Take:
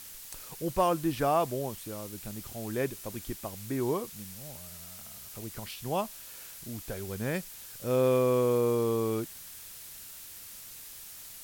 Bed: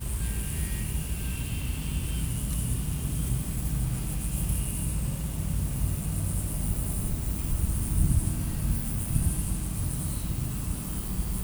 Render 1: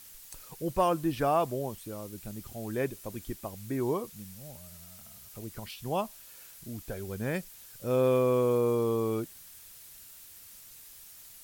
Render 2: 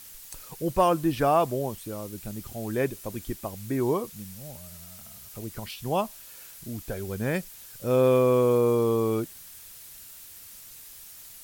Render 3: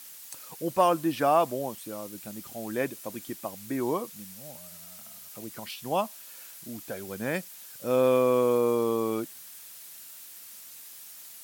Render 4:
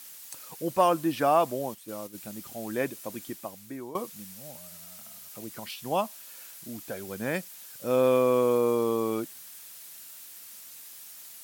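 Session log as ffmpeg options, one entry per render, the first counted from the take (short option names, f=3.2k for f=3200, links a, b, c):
-af "afftdn=nr=6:nf=-47"
-af "volume=4.5dB"
-af "highpass=220,equalizer=f=410:t=o:w=0.29:g=-6.5"
-filter_complex "[0:a]asplit=3[a][b][c];[a]afade=t=out:st=1.65:d=0.02[d];[b]agate=range=-7dB:threshold=-40dB:ratio=16:release=100:detection=peak,afade=t=in:st=1.65:d=0.02,afade=t=out:st=2.13:d=0.02[e];[c]afade=t=in:st=2.13:d=0.02[f];[d][e][f]amix=inputs=3:normalize=0,asplit=2[g][h];[g]atrim=end=3.95,asetpts=PTS-STARTPTS,afade=t=out:st=3.23:d=0.72:silence=0.16788[i];[h]atrim=start=3.95,asetpts=PTS-STARTPTS,afade=t=in:d=0.004:c=hsin:silence=0.16788[j];[i][j]concat=n=2:v=0:a=1"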